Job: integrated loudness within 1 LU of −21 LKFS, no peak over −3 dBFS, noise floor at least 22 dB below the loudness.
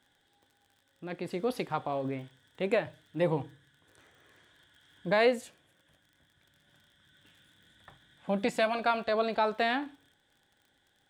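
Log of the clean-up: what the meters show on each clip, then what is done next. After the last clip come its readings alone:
crackle rate 45 per second; integrated loudness −31.0 LKFS; sample peak −14.0 dBFS; target loudness −21.0 LKFS
→ click removal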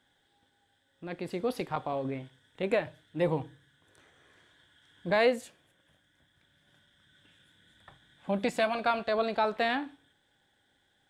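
crackle rate 0.090 per second; integrated loudness −31.0 LKFS; sample peak −14.0 dBFS; target loudness −21.0 LKFS
→ level +10 dB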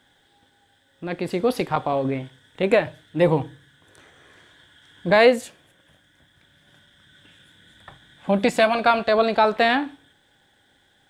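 integrated loudness −21.0 LKFS; sample peak −4.0 dBFS; background noise floor −62 dBFS

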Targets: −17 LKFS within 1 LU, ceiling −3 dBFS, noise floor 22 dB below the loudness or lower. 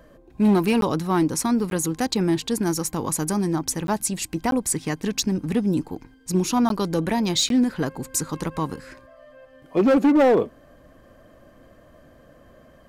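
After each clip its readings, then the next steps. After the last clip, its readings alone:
share of clipped samples 1.3%; peaks flattened at −13.0 dBFS; number of dropouts 6; longest dropout 12 ms; integrated loudness −22.5 LKFS; sample peak −13.0 dBFS; target loudness −17.0 LKFS
→ clipped peaks rebuilt −13 dBFS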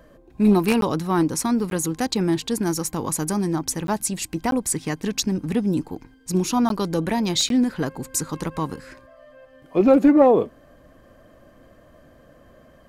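share of clipped samples 0.0%; number of dropouts 6; longest dropout 12 ms
→ repair the gap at 0:00.81/0:01.70/0:03.87/0:04.51/0:06.69/0:07.49, 12 ms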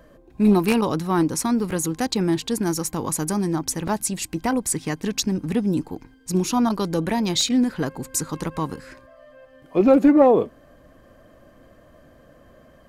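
number of dropouts 0; integrated loudness −22.0 LKFS; sample peak −4.0 dBFS; target loudness −17.0 LKFS
→ level +5 dB
brickwall limiter −3 dBFS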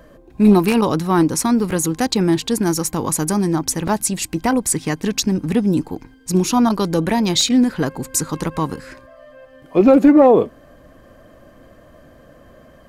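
integrated loudness −17.0 LKFS; sample peak −3.0 dBFS; background noise floor −47 dBFS

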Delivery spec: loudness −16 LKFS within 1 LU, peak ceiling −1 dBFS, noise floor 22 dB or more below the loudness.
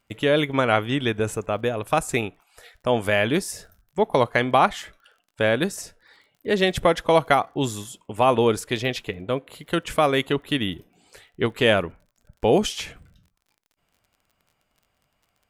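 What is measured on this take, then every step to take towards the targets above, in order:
crackle rate 33 per second; integrated loudness −23.0 LKFS; sample peak −3.5 dBFS; target loudness −16.0 LKFS
→ click removal
level +7 dB
brickwall limiter −1 dBFS

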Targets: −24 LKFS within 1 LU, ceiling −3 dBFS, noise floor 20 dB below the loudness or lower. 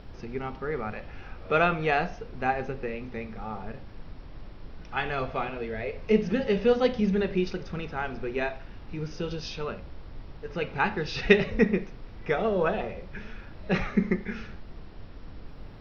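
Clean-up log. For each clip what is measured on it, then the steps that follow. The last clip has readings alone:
background noise floor −45 dBFS; target noise floor −49 dBFS; integrated loudness −28.5 LKFS; sample peak −5.5 dBFS; target loudness −24.0 LKFS
→ noise reduction from a noise print 6 dB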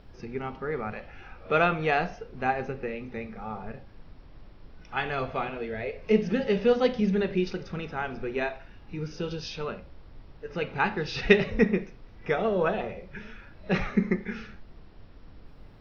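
background noise floor −50 dBFS; integrated loudness −28.5 LKFS; sample peak −5.5 dBFS; target loudness −24.0 LKFS
→ level +4.5 dB
brickwall limiter −3 dBFS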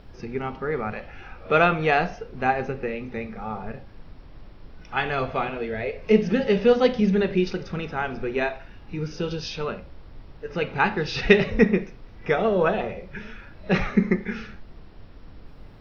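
integrated loudness −24.5 LKFS; sample peak −3.0 dBFS; background noise floor −46 dBFS

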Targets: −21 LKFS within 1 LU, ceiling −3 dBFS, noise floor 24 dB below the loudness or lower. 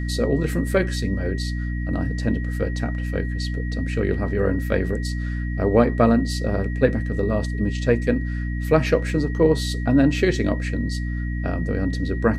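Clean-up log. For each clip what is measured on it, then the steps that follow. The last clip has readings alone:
mains hum 60 Hz; hum harmonics up to 300 Hz; level of the hum −23 dBFS; interfering tone 1,900 Hz; level of the tone −37 dBFS; integrated loudness −22.5 LKFS; sample peak −2.5 dBFS; target loudness −21.0 LKFS
→ mains-hum notches 60/120/180/240/300 Hz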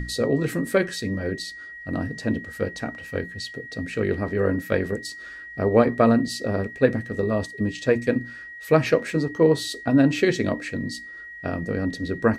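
mains hum none found; interfering tone 1,900 Hz; level of the tone −37 dBFS
→ notch filter 1,900 Hz, Q 30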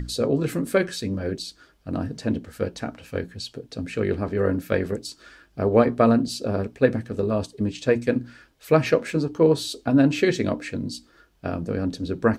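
interfering tone none found; integrated loudness −24.0 LKFS; sample peak −4.0 dBFS; target loudness −21.0 LKFS
→ level +3 dB
brickwall limiter −3 dBFS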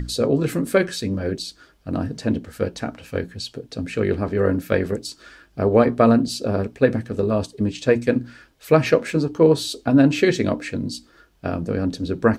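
integrated loudness −21.5 LKFS; sample peak −3.0 dBFS; background noise floor −55 dBFS

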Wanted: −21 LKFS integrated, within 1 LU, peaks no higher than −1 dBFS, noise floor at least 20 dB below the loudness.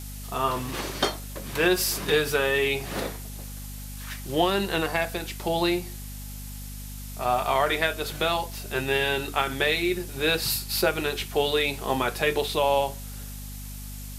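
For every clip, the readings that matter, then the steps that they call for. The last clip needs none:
mains hum 50 Hz; hum harmonics up to 250 Hz; level of the hum −36 dBFS; background noise floor −38 dBFS; target noise floor −46 dBFS; integrated loudness −25.5 LKFS; sample peak −7.0 dBFS; target loudness −21.0 LKFS
→ hum removal 50 Hz, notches 5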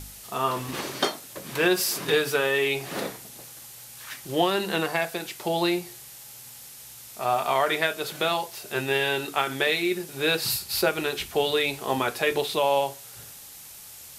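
mains hum none found; background noise floor −45 dBFS; target noise floor −46 dBFS
→ broadband denoise 6 dB, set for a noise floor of −45 dBFS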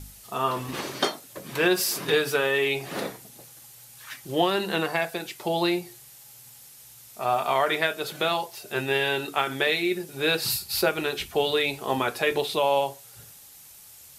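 background noise floor −49 dBFS; integrated loudness −26.0 LKFS; sample peak −7.5 dBFS; target loudness −21.0 LKFS
→ level +5 dB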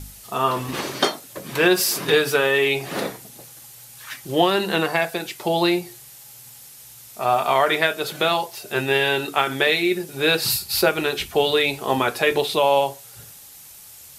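integrated loudness −21.0 LKFS; sample peak −2.5 dBFS; background noise floor −44 dBFS

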